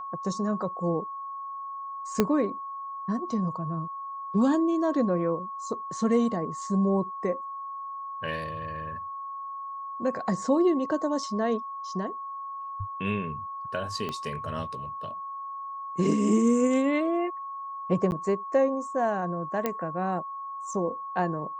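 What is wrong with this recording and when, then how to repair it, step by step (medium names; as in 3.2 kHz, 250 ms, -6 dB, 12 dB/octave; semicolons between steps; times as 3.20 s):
whine 1.1 kHz -34 dBFS
2.20 s: pop -8 dBFS
14.09 s: pop -19 dBFS
18.11–18.12 s: dropout 9.9 ms
19.66 s: pop -13 dBFS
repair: de-click; band-stop 1.1 kHz, Q 30; interpolate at 18.11 s, 9.9 ms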